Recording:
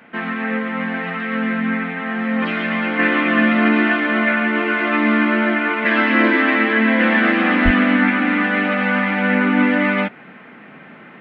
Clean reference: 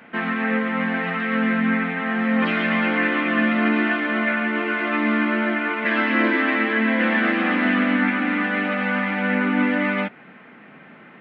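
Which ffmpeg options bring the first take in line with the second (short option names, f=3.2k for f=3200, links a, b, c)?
-filter_complex "[0:a]asplit=3[a][b][c];[a]afade=t=out:st=7.64:d=0.02[d];[b]highpass=f=140:w=0.5412,highpass=f=140:w=1.3066,afade=t=in:st=7.64:d=0.02,afade=t=out:st=7.76:d=0.02[e];[c]afade=t=in:st=7.76:d=0.02[f];[d][e][f]amix=inputs=3:normalize=0,asetnsamples=n=441:p=0,asendcmd='2.99 volume volume -4.5dB',volume=0dB"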